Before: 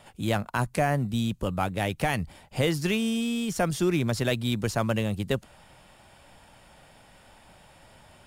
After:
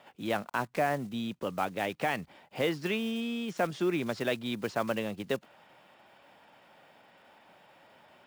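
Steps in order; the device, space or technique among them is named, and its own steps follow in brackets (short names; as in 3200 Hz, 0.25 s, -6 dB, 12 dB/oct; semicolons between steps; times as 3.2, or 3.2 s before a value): early digital voice recorder (BPF 250–3400 Hz; block floating point 5-bit); gain -2.5 dB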